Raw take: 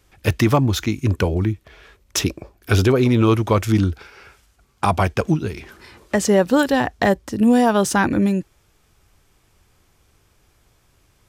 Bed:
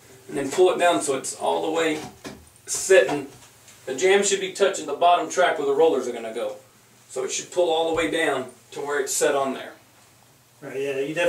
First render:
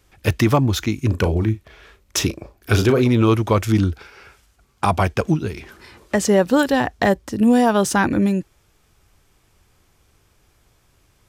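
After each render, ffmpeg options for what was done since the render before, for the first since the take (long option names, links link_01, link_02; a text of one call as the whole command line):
ffmpeg -i in.wav -filter_complex "[0:a]asettb=1/sr,asplit=3[link_01][link_02][link_03];[link_01]atrim=end=1.074[link_04];[link_02]atrim=start=1.07:end=3.03,asetpts=PTS-STARTPTS,afade=type=in:duration=0.004:curve=qsin,afade=type=out:start_time=1.956:duration=0.004:curve=qsin,asplit=2[link_05][link_06];[link_06]adelay=36,volume=-9.5dB[link_07];[link_05][link_07]amix=inputs=2:normalize=0,atrim=end_sample=86436[link_08];[link_03]atrim=start=3.026[link_09];[link_04][link_08]acrossfade=duration=0.004:curve1=hsin:curve2=qsin[link_10];[link_10][link_09]acrossfade=duration=0.004:curve1=qsin:curve2=hsin" out.wav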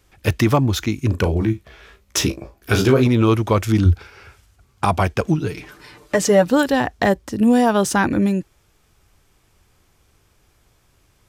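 ffmpeg -i in.wav -filter_complex "[0:a]asettb=1/sr,asplit=3[link_01][link_02][link_03];[link_01]atrim=end=1.394[link_04];[link_02]atrim=start=1.39:end=3.07,asetpts=PTS-STARTPTS,afade=type=in:duration=0.004:curve=qsin,afade=type=out:start_time=1.676:duration=0.004:curve=qsin,asplit=2[link_05][link_06];[link_06]adelay=15,volume=-5dB[link_07];[link_05][link_07]amix=inputs=2:normalize=0,atrim=end_sample=74088[link_08];[link_03]atrim=start=3.066[link_09];[link_04][link_08]acrossfade=duration=0.004:curve1=hsin:curve2=qsin[link_10];[link_10][link_09]acrossfade=duration=0.004:curve1=qsin:curve2=hsin,asettb=1/sr,asplit=3[link_11][link_12][link_13];[link_11]atrim=end=3.854[link_14];[link_12]atrim=start=3.85:end=4.85,asetpts=PTS-STARTPTS,afade=type=in:duration=0.004:curve=qsin,afade=type=out:start_time=0.996:duration=0.004:curve=qsin,equalizer=frequency=90:width=1.5:gain=10.5[link_15];[link_13]atrim=start=4.846[link_16];[link_14][link_15]acrossfade=duration=0.004:curve1=hsin:curve2=qsin[link_17];[link_17][link_16]acrossfade=duration=0.004:curve1=qsin:curve2=hsin,asettb=1/sr,asplit=3[link_18][link_19][link_20];[link_18]atrim=end=5.374[link_21];[link_19]atrim=start=5.37:end=6.49,asetpts=PTS-STARTPTS,afade=type=in:duration=0.004:curve=qsin,afade=type=out:start_time=1.116:duration=0.004:curve=qsin,aecho=1:1:6.7:0.73,atrim=end_sample=49392[link_22];[link_20]atrim=start=6.486[link_23];[link_21][link_22]acrossfade=duration=0.004:curve1=hsin:curve2=qsin[link_24];[link_24][link_23]acrossfade=duration=0.004:curve1=qsin:curve2=hsin" out.wav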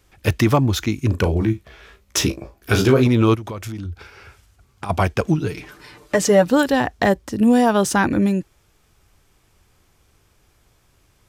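ffmpeg -i in.wav -filter_complex "[0:a]asplit=3[link_01][link_02][link_03];[link_01]afade=type=out:start_time=3.34:duration=0.02[link_04];[link_02]acompressor=threshold=-26dB:ratio=10:attack=3.2:release=140:knee=1:detection=peak,afade=type=in:start_time=3.34:duration=0.02,afade=type=out:start_time=4.89:duration=0.02[link_05];[link_03]afade=type=in:start_time=4.89:duration=0.02[link_06];[link_04][link_05][link_06]amix=inputs=3:normalize=0" out.wav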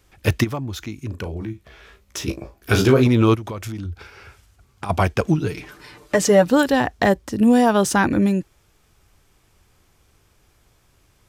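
ffmpeg -i in.wav -filter_complex "[0:a]asplit=3[link_01][link_02][link_03];[link_01]afade=type=out:start_time=0.43:duration=0.02[link_04];[link_02]acompressor=threshold=-44dB:ratio=1.5:attack=3.2:release=140:knee=1:detection=peak,afade=type=in:start_time=0.43:duration=0.02,afade=type=out:start_time=2.27:duration=0.02[link_05];[link_03]afade=type=in:start_time=2.27:duration=0.02[link_06];[link_04][link_05][link_06]amix=inputs=3:normalize=0" out.wav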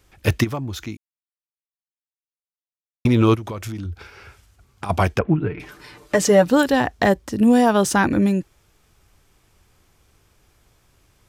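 ffmpeg -i in.wav -filter_complex "[0:a]asettb=1/sr,asplit=3[link_01][link_02][link_03];[link_01]atrim=end=5.194[link_04];[link_02]atrim=start=5.19:end=5.6,asetpts=PTS-STARTPTS,afade=type=in:duration=0.004:curve=qsin,afade=type=out:start_time=0.406:duration=0.004:curve=qsin,lowpass=frequency=2300:width=0.5412,lowpass=frequency=2300:width=1.3066[link_05];[link_03]atrim=start=5.596[link_06];[link_04][link_05]acrossfade=duration=0.004:curve1=hsin:curve2=qsin[link_07];[link_07][link_06]acrossfade=duration=0.004:curve1=qsin:curve2=hsin,asplit=3[link_08][link_09][link_10];[link_08]atrim=end=0.97,asetpts=PTS-STARTPTS,afade=type=out:start_time=0.966:duration=0.004:curve=hsin[link_11];[link_09]atrim=start=0.97:end=3.05,asetpts=PTS-STARTPTS,volume=0[link_12];[link_10]atrim=start=3.05,asetpts=PTS-STARTPTS,afade=type=in:duration=0.004:curve=hsin[link_13];[link_11][link_12][link_13]concat=n=3:v=0:a=1" out.wav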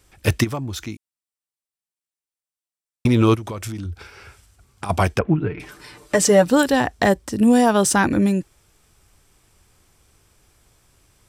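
ffmpeg -i in.wav -af "equalizer=frequency=8100:width_type=o:width=0.98:gain=7,bandreject=frequency=6700:width=14" out.wav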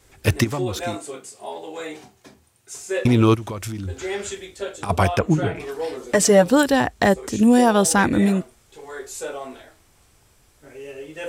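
ffmpeg -i in.wav -i bed.wav -filter_complex "[1:a]volume=-10dB[link_01];[0:a][link_01]amix=inputs=2:normalize=0" out.wav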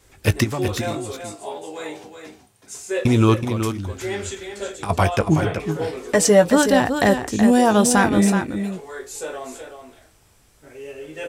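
ffmpeg -i in.wav -filter_complex "[0:a]asplit=2[link_01][link_02];[link_02]adelay=19,volume=-13dB[link_03];[link_01][link_03]amix=inputs=2:normalize=0,aecho=1:1:374:0.398" out.wav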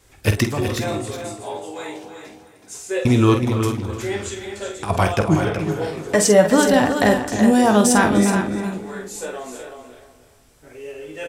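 ffmpeg -i in.wav -filter_complex "[0:a]asplit=2[link_01][link_02];[link_02]adelay=48,volume=-8dB[link_03];[link_01][link_03]amix=inputs=2:normalize=0,asplit=2[link_04][link_05];[link_05]adelay=301,lowpass=frequency=3000:poles=1,volume=-11dB,asplit=2[link_06][link_07];[link_07]adelay=301,lowpass=frequency=3000:poles=1,volume=0.32,asplit=2[link_08][link_09];[link_09]adelay=301,lowpass=frequency=3000:poles=1,volume=0.32[link_10];[link_04][link_06][link_08][link_10]amix=inputs=4:normalize=0" out.wav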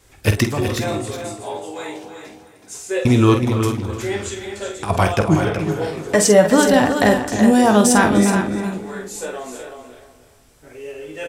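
ffmpeg -i in.wav -af "volume=1.5dB,alimiter=limit=-1dB:level=0:latency=1" out.wav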